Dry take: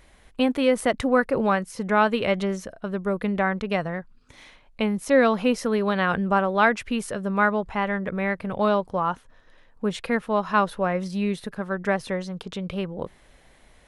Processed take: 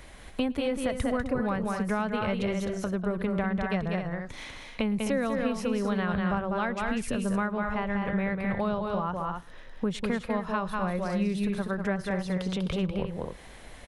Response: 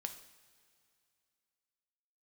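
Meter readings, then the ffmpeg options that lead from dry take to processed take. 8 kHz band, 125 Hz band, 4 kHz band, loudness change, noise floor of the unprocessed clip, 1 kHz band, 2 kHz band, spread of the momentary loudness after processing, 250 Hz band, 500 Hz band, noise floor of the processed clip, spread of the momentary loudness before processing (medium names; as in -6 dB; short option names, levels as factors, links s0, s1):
-4.0 dB, -0.5 dB, -5.0 dB, -5.5 dB, -56 dBFS, -8.0 dB, -7.5 dB, 6 LU, -2.5 dB, -7.0 dB, -47 dBFS, 10 LU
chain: -filter_complex "[0:a]asplit=2[s0][s1];[s1]aecho=0:1:195.3|259.5:0.562|0.316[s2];[s0][s2]amix=inputs=2:normalize=0,acrossover=split=130[s3][s4];[s4]acompressor=threshold=0.0141:ratio=4[s5];[s3][s5]amix=inputs=2:normalize=0,asplit=2[s6][s7];[s7]aecho=0:1:110:0.0631[s8];[s6][s8]amix=inputs=2:normalize=0,volume=2.11"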